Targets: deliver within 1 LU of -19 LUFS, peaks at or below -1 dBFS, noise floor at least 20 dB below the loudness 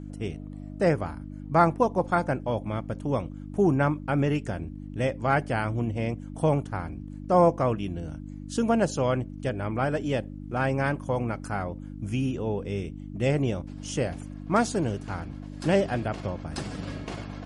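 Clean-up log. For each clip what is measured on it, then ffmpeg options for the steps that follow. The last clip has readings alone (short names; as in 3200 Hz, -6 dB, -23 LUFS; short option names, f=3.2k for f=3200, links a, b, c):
hum 50 Hz; harmonics up to 300 Hz; hum level -37 dBFS; loudness -28.0 LUFS; peak -7.0 dBFS; loudness target -19.0 LUFS
-> -af "bandreject=f=50:t=h:w=4,bandreject=f=100:t=h:w=4,bandreject=f=150:t=h:w=4,bandreject=f=200:t=h:w=4,bandreject=f=250:t=h:w=4,bandreject=f=300:t=h:w=4"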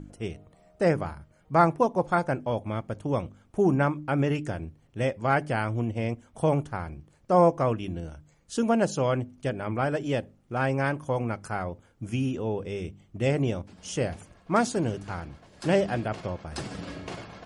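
hum none; loudness -28.0 LUFS; peak -8.0 dBFS; loudness target -19.0 LUFS
-> -af "volume=9dB,alimiter=limit=-1dB:level=0:latency=1"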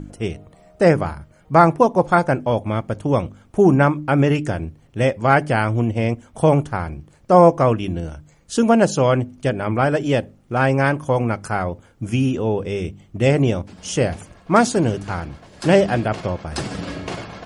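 loudness -19.0 LUFS; peak -1.0 dBFS; noise floor -52 dBFS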